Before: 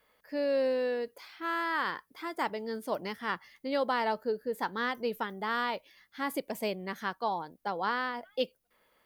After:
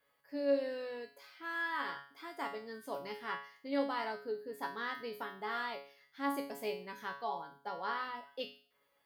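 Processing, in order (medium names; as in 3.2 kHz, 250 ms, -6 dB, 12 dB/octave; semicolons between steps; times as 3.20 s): high-pass 41 Hz; hum notches 50/100/150/200/250 Hz; feedback comb 140 Hz, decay 0.45 s, harmonics all, mix 90%; trim +5 dB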